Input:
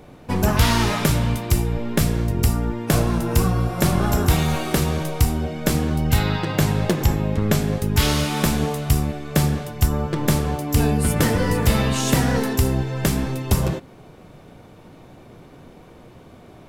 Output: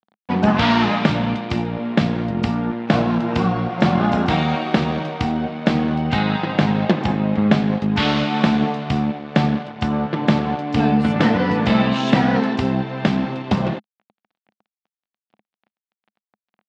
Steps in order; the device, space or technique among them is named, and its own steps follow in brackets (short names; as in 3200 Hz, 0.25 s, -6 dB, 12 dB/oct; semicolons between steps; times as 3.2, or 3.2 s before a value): blown loudspeaker (crossover distortion -35.5 dBFS; speaker cabinet 180–3900 Hz, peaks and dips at 210 Hz +8 dB, 420 Hz -5 dB, 750 Hz +5 dB); gain +4 dB